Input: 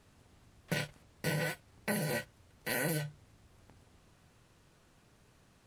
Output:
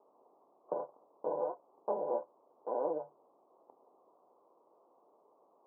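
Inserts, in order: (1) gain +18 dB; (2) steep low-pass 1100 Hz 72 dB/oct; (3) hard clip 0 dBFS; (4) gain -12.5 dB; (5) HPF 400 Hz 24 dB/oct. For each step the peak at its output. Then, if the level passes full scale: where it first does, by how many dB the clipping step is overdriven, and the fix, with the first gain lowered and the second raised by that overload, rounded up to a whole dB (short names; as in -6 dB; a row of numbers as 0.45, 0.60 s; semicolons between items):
-0.5, -4.5, -4.5, -17.0, -20.5 dBFS; no overload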